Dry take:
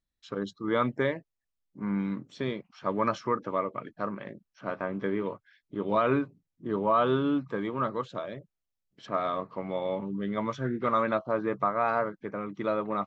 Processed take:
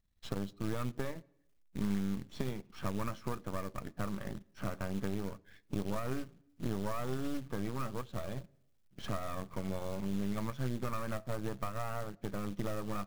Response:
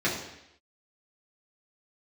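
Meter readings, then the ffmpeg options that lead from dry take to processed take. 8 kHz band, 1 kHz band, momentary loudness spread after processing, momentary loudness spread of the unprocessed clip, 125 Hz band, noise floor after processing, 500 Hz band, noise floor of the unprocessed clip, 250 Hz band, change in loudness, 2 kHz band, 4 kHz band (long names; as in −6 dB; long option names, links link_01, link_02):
can't be measured, −13.0 dB, 6 LU, 12 LU, −0.5 dB, −69 dBFS, −12.0 dB, −85 dBFS, −6.5 dB, −9.0 dB, −10.0 dB, −4.5 dB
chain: -filter_complex "[0:a]aeval=exprs='if(lt(val(0),0),0.251*val(0),val(0))':channel_layout=same,highshelf=frequency=5800:gain=-5.5,acompressor=threshold=-46dB:ratio=4,bass=frequency=250:gain=9,treble=frequency=4000:gain=0,acrusher=bits=4:mode=log:mix=0:aa=0.000001,asplit=2[link_01][link_02];[1:a]atrim=start_sample=2205[link_03];[link_02][link_03]afir=irnorm=-1:irlink=0,volume=-32.5dB[link_04];[link_01][link_04]amix=inputs=2:normalize=0,volume=6.5dB"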